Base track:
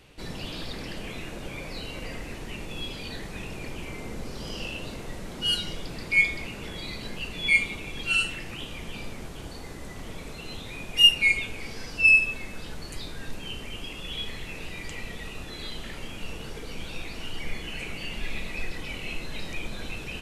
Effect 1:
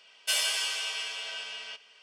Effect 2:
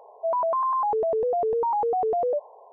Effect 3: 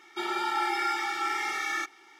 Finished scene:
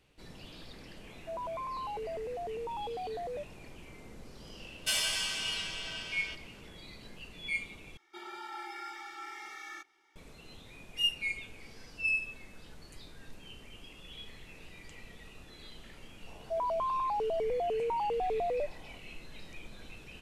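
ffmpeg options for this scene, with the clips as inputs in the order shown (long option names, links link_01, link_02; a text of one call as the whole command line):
ffmpeg -i bed.wav -i cue0.wav -i cue1.wav -i cue2.wav -filter_complex "[2:a]asplit=2[link_01][link_02];[0:a]volume=-13.5dB,asplit=2[link_03][link_04];[link_03]atrim=end=7.974[link_05];[3:a]atrim=end=2.19,asetpts=PTS-STARTPTS,volume=-14.5dB[link_06];[link_04]atrim=start=10.156[link_07];[link_01]atrim=end=2.72,asetpts=PTS-STARTPTS,volume=-14.5dB,afade=type=in:duration=0.004:curve=hsin,afade=type=out:start_time=2.716:duration=0.004:curve=hsin,adelay=1040[link_08];[1:a]atrim=end=2.02,asetpts=PTS-STARTPTS,volume=-3dB,afade=type=in:duration=0.004:curve=hsin,afade=type=out:start_time=2.016:duration=0.004:curve=hsin,adelay=4590[link_09];[link_02]atrim=end=2.72,asetpts=PTS-STARTPTS,volume=-8dB,afade=type=in:duration=0.004:curve=hsin,afade=type=out:start_time=2.716:duration=0.004:curve=hsin,adelay=16270[link_10];[link_05][link_06]acrossfade=duration=0.004:curve1=hsin:curve2=hsin[link_11];[link_11][link_07]acrossfade=duration=0.004:curve1=hsin:curve2=hsin[link_12];[link_12][link_08][link_09][link_10]amix=inputs=4:normalize=0" out.wav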